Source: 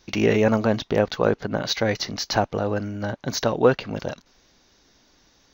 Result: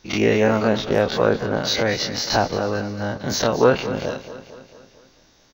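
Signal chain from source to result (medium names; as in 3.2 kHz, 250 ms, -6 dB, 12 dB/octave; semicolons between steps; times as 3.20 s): every event in the spectrogram widened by 60 ms; feedback delay 224 ms, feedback 55%, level -13.5 dB; trim -1.5 dB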